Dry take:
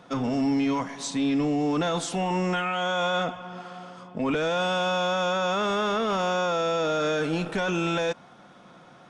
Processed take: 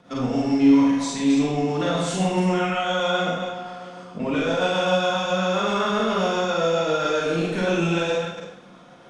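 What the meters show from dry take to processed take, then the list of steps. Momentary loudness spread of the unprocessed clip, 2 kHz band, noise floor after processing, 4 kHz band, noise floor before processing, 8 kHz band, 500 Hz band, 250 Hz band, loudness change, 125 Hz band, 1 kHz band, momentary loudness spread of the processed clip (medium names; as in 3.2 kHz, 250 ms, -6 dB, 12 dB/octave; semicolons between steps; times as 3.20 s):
6 LU, +2.5 dB, -47 dBFS, +3.0 dB, -51 dBFS, +3.0 dB, +4.0 dB, +6.0 dB, +4.0 dB, +5.0 dB, +2.0 dB, 11 LU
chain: chunks repeated in reverse 150 ms, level -6 dB; rotary cabinet horn 7.5 Hz; Schroeder reverb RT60 0.67 s, combs from 32 ms, DRR -3 dB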